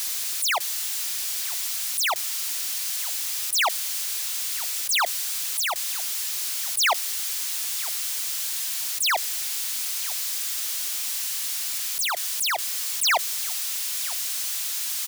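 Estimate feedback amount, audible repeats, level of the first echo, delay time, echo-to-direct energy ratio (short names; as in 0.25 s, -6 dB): 20%, 2, -20.0 dB, 0.958 s, -20.0 dB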